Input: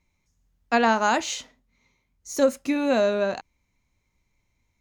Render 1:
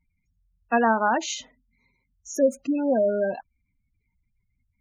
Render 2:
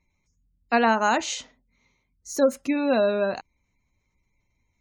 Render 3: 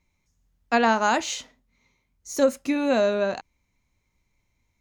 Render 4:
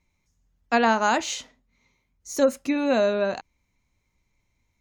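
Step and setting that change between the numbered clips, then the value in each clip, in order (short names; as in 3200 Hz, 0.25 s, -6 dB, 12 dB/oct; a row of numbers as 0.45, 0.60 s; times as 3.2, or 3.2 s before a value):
spectral gate, under each frame's peak: -15, -30, -60, -45 dB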